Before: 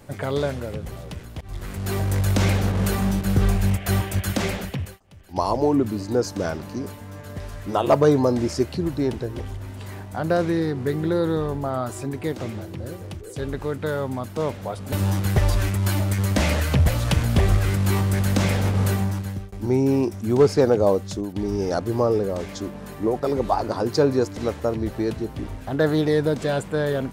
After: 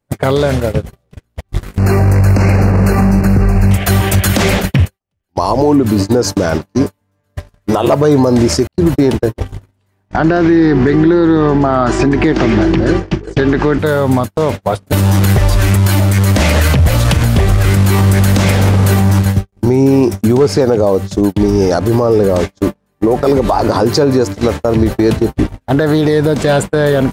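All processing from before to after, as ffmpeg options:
ffmpeg -i in.wav -filter_complex "[0:a]asettb=1/sr,asplit=3[link_01][link_02][link_03];[link_01]atrim=end=1.784[link_04];[link_02]atrim=start=1.78:end=3.71,asetpts=PTS-STARTPTS,afade=type=in:duration=0.004:curve=qsin,afade=type=out:start_time=1.926:duration=0.004:curve=qsin,asuperstop=centerf=3400:order=12:qfactor=2.6,highshelf=frequency=3500:gain=-11.5[link_05];[link_03]atrim=start=3.706[link_06];[link_04][link_05]acrossfade=duration=0.004:curve1=hsin:curve2=qsin[link_07];[link_07][link_06]acrossfade=duration=0.004:curve1=qsin:curve2=hsin,asettb=1/sr,asplit=3[link_08][link_09][link_10];[link_08]atrim=end=8.674[link_11];[link_09]atrim=start=8.67:end=9.44,asetpts=PTS-STARTPTS,afade=type=in:duration=0.004:curve=qsin,afade=type=out:start_time=0.766:duration=0.004:curve=qsin,bandreject=frequency=60:width_type=h:width=6,bandreject=frequency=120:width_type=h:width=6,bandreject=frequency=180:width_type=h:width=6,agate=range=-55dB:threshold=-32dB:ratio=16:release=100:detection=peak[link_12];[link_10]atrim=start=9.436[link_13];[link_11][link_12]acrossfade=duration=0.004:curve1=hsin:curve2=qsin[link_14];[link_14][link_13]acrossfade=duration=0.004:curve1=qsin:curve2=hsin,asettb=1/sr,asplit=3[link_15][link_16][link_17];[link_15]atrim=end=10.094[link_18];[link_16]atrim=start=10.09:end=13.79,asetpts=PTS-STARTPTS,afade=type=in:duration=0.004:curve=qsin,afade=type=out:start_time=3.696:duration=0.004:curve=qsin,highpass=160,equalizer=frequency=330:width_type=q:width=4:gain=5,equalizer=frequency=520:width_type=q:width=4:gain=-7,equalizer=frequency=1700:width_type=q:width=4:gain=4,equalizer=frequency=3900:width_type=q:width=4:gain=-5,lowpass=frequency=5500:width=0.5412,lowpass=frequency=5500:width=1.3066,acontrast=61,aeval=exprs='val(0)+0.0178*(sin(2*PI*50*n/s)+sin(2*PI*2*50*n/s)/2+sin(2*PI*3*50*n/s)/3+sin(2*PI*4*50*n/s)/4+sin(2*PI*5*50*n/s)/5)':channel_layout=same[link_19];[link_17]atrim=start=13.786[link_20];[link_18][link_19]acrossfade=duration=0.004:curve1=hsin:curve2=qsin[link_21];[link_21][link_20]acrossfade=duration=0.004:curve1=qsin:curve2=hsin,agate=range=-49dB:threshold=-28dB:ratio=16:detection=peak,acompressor=threshold=-27dB:ratio=6,alimiter=level_in=24.5dB:limit=-1dB:release=50:level=0:latency=1,volume=-1.5dB" out.wav

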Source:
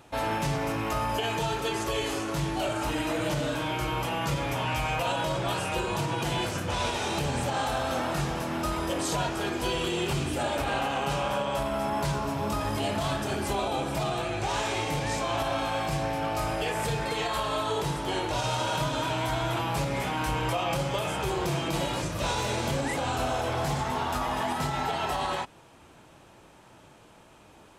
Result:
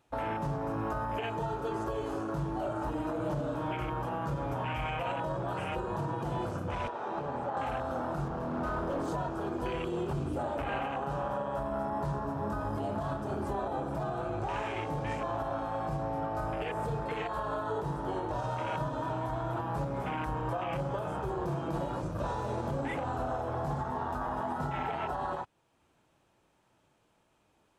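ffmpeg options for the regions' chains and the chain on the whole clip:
ffmpeg -i in.wav -filter_complex "[0:a]asettb=1/sr,asplit=3[link_01][link_02][link_03];[link_01]atrim=end=6.884[link_04];[link_02]atrim=start=6.88:end=7.57,asetpts=PTS-STARTPTS,afade=type=in:duration=0.004:curve=qsin,afade=type=out:start_time=0.686:duration=0.004:curve=qsin,lowpass=1800,aemphasis=mode=production:type=riaa[link_05];[link_03]atrim=start=7.566[link_06];[link_04][link_05]acrossfade=duration=0.004:curve1=hsin:curve2=qsin[link_07];[link_07][link_06]acrossfade=duration=0.004:curve1=qsin:curve2=hsin,asettb=1/sr,asplit=3[link_08][link_09][link_10];[link_08]atrim=end=8.284[link_11];[link_09]atrim=start=8.28:end=9.08,asetpts=PTS-STARTPTS,afade=type=in:duration=0.004:curve=qsin,afade=type=out:start_time=0.796:duration=0.004:curve=qsin,lowpass=frequency=3300:poles=1,asplit=2[link_12][link_13];[link_13]adelay=32,volume=-7dB[link_14];[link_12][link_14]amix=inputs=2:normalize=0,atrim=end_sample=35280,aeval=exprs='0.0473*(abs(mod(val(0)/0.0473+3,4)-2)-1)':channel_layout=same[link_15];[link_10]atrim=start=9.076[link_16];[link_11][link_15]acrossfade=duration=0.004:curve1=hsin:curve2=qsin[link_17];[link_17][link_16]acrossfade=duration=0.004:curve1=qsin:curve2=hsin,afwtdn=0.0251,alimiter=level_in=1dB:limit=-24dB:level=0:latency=1:release=433,volume=-1dB" out.wav

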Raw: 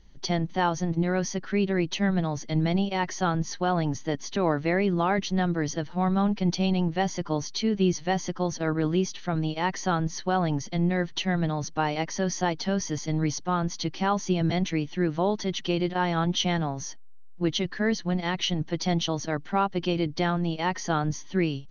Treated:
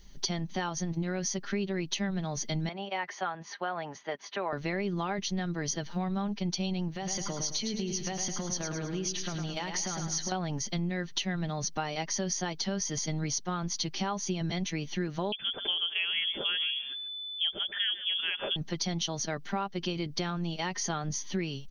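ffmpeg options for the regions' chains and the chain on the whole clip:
ffmpeg -i in.wav -filter_complex "[0:a]asettb=1/sr,asplit=3[link_01][link_02][link_03];[link_01]atrim=end=2.694[link_04];[link_02]atrim=start=2.69:end=4.53,asetpts=PTS-STARTPTS,afade=type=in:duration=0.004:curve=qsin,afade=type=out:start_time=1.836:duration=0.004:curve=qsin,highpass=110,acrossover=split=490 2700:gain=0.126 1 0.0708[link_05][link_06][link_07];[link_05][link_06][link_07]amix=inputs=3:normalize=0[link_08];[link_03]atrim=start=4.526[link_09];[link_04][link_08]acrossfade=duration=0.004:curve1=hsin:curve2=qsin[link_10];[link_10][link_09]acrossfade=duration=0.004:curve1=qsin:curve2=hsin,asettb=1/sr,asplit=3[link_11][link_12][link_13];[link_11]atrim=end=6.914[link_14];[link_12]atrim=start=6.91:end=10.32,asetpts=PTS-STARTPTS,afade=type=in:duration=0.004:curve=qsin,afade=type=out:start_time=3.406:duration=0.004:curve=qsin,acompressor=threshold=-30dB:ratio=6:attack=3.2:release=140:knee=1:detection=peak,aecho=1:1:106|212|318|424|530:0.473|0.213|0.0958|0.0431|0.0194,atrim=end_sample=150381[link_15];[link_13]atrim=start=10.316[link_16];[link_14][link_15]acrossfade=duration=0.004:curve1=hsin:curve2=qsin[link_17];[link_17][link_16]acrossfade=duration=0.004:curve1=qsin:curve2=hsin,asettb=1/sr,asplit=3[link_18][link_19][link_20];[link_18]atrim=end=15.324[link_21];[link_19]atrim=start=15.32:end=18.56,asetpts=PTS-STARTPTS,afade=type=in:duration=0.004:curve=qsin,afade=type=out:start_time=3.236:duration=0.004:curve=qsin,lowpass=frequency=3000:width_type=q:width=0.5098,lowpass=frequency=3000:width_type=q:width=0.6013,lowpass=frequency=3000:width_type=q:width=0.9,lowpass=frequency=3000:width_type=q:width=2.563,afreqshift=-3500,aecho=1:1:137:0.168,atrim=end_sample=142884[link_22];[link_20]atrim=start=18.556[link_23];[link_21][link_22]acrossfade=duration=0.004:curve1=hsin:curve2=qsin[link_24];[link_24][link_23]acrossfade=duration=0.004:curve1=qsin:curve2=hsin,aemphasis=mode=production:type=75kf,aecho=1:1:5:0.34,acompressor=threshold=-30dB:ratio=4" out.wav

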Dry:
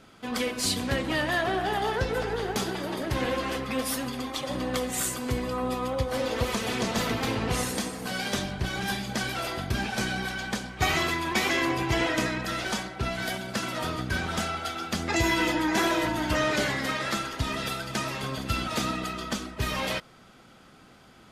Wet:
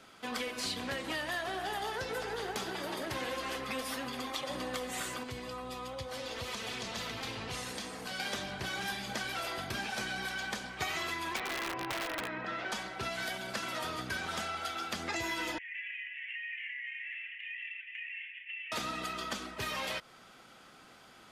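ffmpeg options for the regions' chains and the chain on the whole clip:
ffmpeg -i in.wav -filter_complex "[0:a]asettb=1/sr,asplit=3[link_01][link_02][link_03];[link_01]atrim=end=5.234[link_04];[link_02]atrim=start=5.23:end=8.2,asetpts=PTS-STARTPTS,afade=type=in:duration=0.004:curve=qsin,afade=type=out:start_time=2.966:duration=0.004:curve=qsin,lowpass=frequency=4000:poles=1,acrossover=split=130|3000[link_05][link_06][link_07];[link_06]acompressor=threshold=-36dB:ratio=6:attack=3.2:release=140:knee=2.83:detection=peak[link_08];[link_05][link_08][link_07]amix=inputs=3:normalize=0[link_09];[link_03]atrim=start=8.196[link_10];[link_04][link_09]acrossfade=duration=0.004:curve1=hsin:curve2=qsin[link_11];[link_11][link_10]acrossfade=duration=0.004:curve1=qsin:curve2=hsin,asettb=1/sr,asplit=3[link_12][link_13][link_14];[link_12]atrim=end=11.364[link_15];[link_13]atrim=start=11.36:end=12.72,asetpts=PTS-STARTPTS,afade=type=in:duration=0.004:curve=qsin,afade=type=out:start_time=1.356:duration=0.004:curve=qsin,highpass=110,lowpass=2100,aeval=exprs='(mod(10.6*val(0)+1,2)-1)/10.6':channel_layout=same[link_16];[link_14]atrim=start=12.716[link_17];[link_15][link_16]acrossfade=duration=0.004:curve1=hsin:curve2=qsin[link_18];[link_18][link_17]acrossfade=duration=0.004:curve1=qsin:curve2=hsin,asettb=1/sr,asplit=3[link_19][link_20][link_21];[link_19]atrim=end=15.584[link_22];[link_20]atrim=start=15.58:end=18.72,asetpts=PTS-STARTPTS,afade=type=in:duration=0.004:curve=qsin,afade=type=out:start_time=3.136:duration=0.004:curve=qsin,asuperpass=centerf=2300:order=12:qfactor=2,acompressor=threshold=-38dB:ratio=4:attack=3.2:release=140:knee=1:detection=peak,asplit=2[link_23][link_24];[link_24]adelay=32,volume=-12dB[link_25];[link_23][link_25]amix=inputs=2:normalize=0,atrim=end_sample=138474[link_26];[link_21]atrim=start=18.716[link_27];[link_22][link_26]acrossfade=duration=0.004:curve1=hsin:curve2=qsin[link_28];[link_28][link_27]acrossfade=duration=0.004:curve1=qsin:curve2=hsin,lowshelf=frequency=330:gain=-11.5,acrossover=split=86|4400[link_29][link_30][link_31];[link_29]acompressor=threshold=-56dB:ratio=4[link_32];[link_30]acompressor=threshold=-35dB:ratio=4[link_33];[link_31]acompressor=threshold=-47dB:ratio=4[link_34];[link_32][link_33][link_34]amix=inputs=3:normalize=0" out.wav

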